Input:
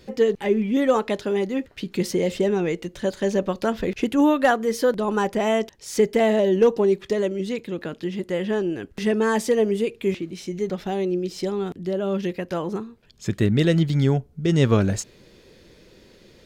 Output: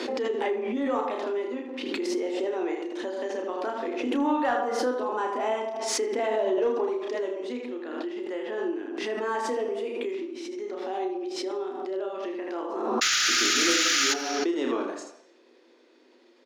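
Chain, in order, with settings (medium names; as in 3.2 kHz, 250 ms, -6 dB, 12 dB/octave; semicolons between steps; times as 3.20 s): distance through air 66 m; early reflections 32 ms -4 dB, 79 ms -6.5 dB; painted sound noise, 13.01–14.14 s, 1.2–7.2 kHz -12 dBFS; rippled Chebyshev high-pass 240 Hz, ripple 6 dB; saturation -9.5 dBFS, distortion -21 dB; on a send at -8 dB: reverberation, pre-delay 76 ms; on the sum: swell ahead of each attack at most 30 dB/s; trim -5.5 dB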